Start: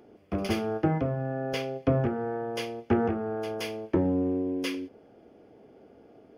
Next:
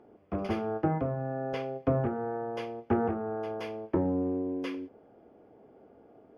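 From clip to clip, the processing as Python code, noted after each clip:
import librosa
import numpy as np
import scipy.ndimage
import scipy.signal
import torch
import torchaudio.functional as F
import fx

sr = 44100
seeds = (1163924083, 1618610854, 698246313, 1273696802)

y = fx.lowpass(x, sr, hz=1500.0, slope=6)
y = fx.peak_eq(y, sr, hz=990.0, db=5.5, octaves=1.4)
y = F.gain(torch.from_numpy(y), -3.5).numpy()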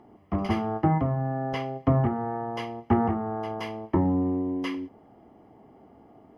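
y = x + 0.6 * np.pad(x, (int(1.0 * sr / 1000.0), 0))[:len(x)]
y = F.gain(torch.from_numpy(y), 4.5).numpy()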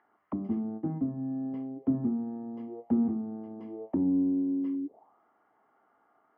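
y = fx.tube_stage(x, sr, drive_db=17.0, bias=0.35)
y = fx.auto_wah(y, sr, base_hz=250.0, top_hz=1700.0, q=5.6, full_db=-30.5, direction='down')
y = F.gain(torch.from_numpy(y), 5.5).numpy()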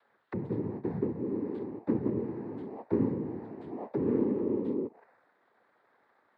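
y = 10.0 ** (-21.5 / 20.0) * np.tanh(x / 10.0 ** (-21.5 / 20.0))
y = fx.noise_vocoder(y, sr, seeds[0], bands=6)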